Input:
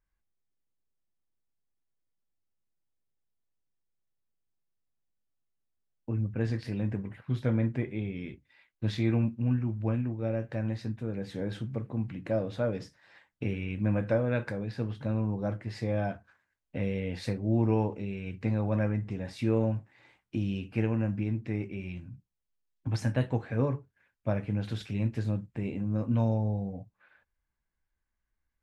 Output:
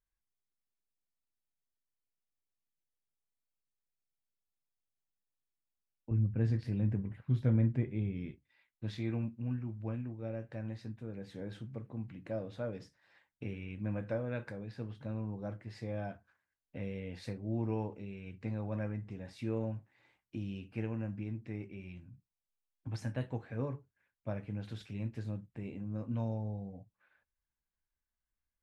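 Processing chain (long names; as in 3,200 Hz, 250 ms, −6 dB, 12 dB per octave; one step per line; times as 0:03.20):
0:06.11–0:08.31: low-shelf EQ 270 Hz +11.5 dB
level −9 dB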